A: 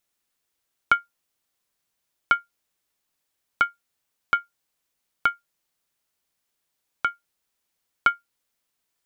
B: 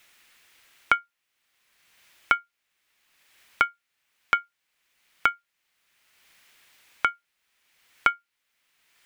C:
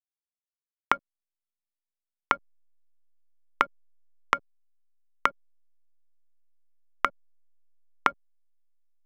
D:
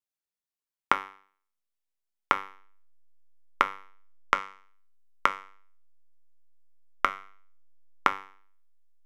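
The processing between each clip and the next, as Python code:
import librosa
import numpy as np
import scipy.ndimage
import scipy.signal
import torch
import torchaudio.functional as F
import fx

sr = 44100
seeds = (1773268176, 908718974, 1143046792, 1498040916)

y1 = fx.peak_eq(x, sr, hz=2200.0, db=13.0, octaves=1.8)
y1 = fx.band_squash(y1, sr, depth_pct=70)
y1 = F.gain(torch.from_numpy(y1), -6.5).numpy()
y2 = fx.rev_schroeder(y1, sr, rt60_s=3.4, comb_ms=28, drr_db=19.5)
y2 = fx.backlash(y2, sr, play_db=-26.5)
y2 = fx.env_lowpass_down(y2, sr, base_hz=770.0, full_db=-26.0)
y2 = F.gain(torch.from_numpy(y2), 2.5).numpy()
y3 = fx.comb_fb(y2, sr, f0_hz=97.0, decay_s=0.49, harmonics='all', damping=0.0, mix_pct=70)
y3 = F.gain(torch.from_numpy(y3), 8.0).numpy()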